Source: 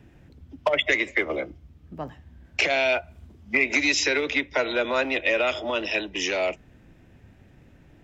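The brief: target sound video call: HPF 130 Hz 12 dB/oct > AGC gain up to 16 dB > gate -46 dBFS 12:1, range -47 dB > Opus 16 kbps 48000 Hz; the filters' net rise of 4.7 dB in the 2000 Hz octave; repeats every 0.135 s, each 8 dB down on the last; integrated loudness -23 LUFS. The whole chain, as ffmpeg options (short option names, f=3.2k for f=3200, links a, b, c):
-af "highpass=130,equalizer=f=2k:t=o:g=5.5,aecho=1:1:135|270|405|540|675:0.398|0.159|0.0637|0.0255|0.0102,dynaudnorm=m=16dB,agate=range=-47dB:threshold=-46dB:ratio=12,volume=-2.5dB" -ar 48000 -c:a libopus -b:a 16k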